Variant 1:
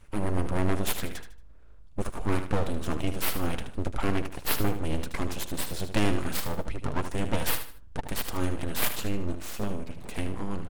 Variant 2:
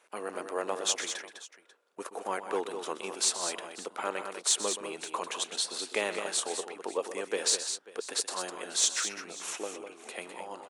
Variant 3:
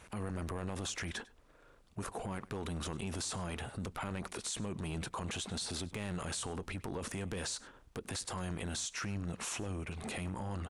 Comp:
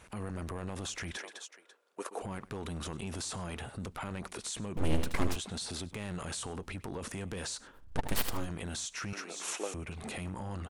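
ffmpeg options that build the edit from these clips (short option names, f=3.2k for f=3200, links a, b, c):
-filter_complex "[1:a]asplit=2[a][b];[0:a]asplit=2[c][d];[2:a]asplit=5[e][f][g][h][i];[e]atrim=end=1.172[j];[a]atrim=start=1.168:end=2.222[k];[f]atrim=start=2.218:end=4.772[l];[c]atrim=start=4.768:end=5.362[m];[g]atrim=start=5.358:end=7.96[n];[d]atrim=start=7.72:end=8.51[o];[h]atrim=start=8.27:end=9.132[p];[b]atrim=start=9.128:end=9.742[q];[i]atrim=start=9.738[r];[j][k]acrossfade=d=0.004:c1=hsin:c2=hsin[s];[s][l]acrossfade=d=0.004:c1=hsin:c2=hsin[t];[t][m]acrossfade=d=0.004:c1=hsin:c2=hsin[u];[u][n]acrossfade=d=0.004:c1=hsin:c2=hsin[v];[v][o]acrossfade=d=0.24:c1=tri:c2=tri[w];[w][p]acrossfade=d=0.24:c1=tri:c2=tri[x];[x][q]acrossfade=d=0.004:c1=hsin:c2=hsin[y];[y][r]acrossfade=d=0.004:c1=hsin:c2=hsin"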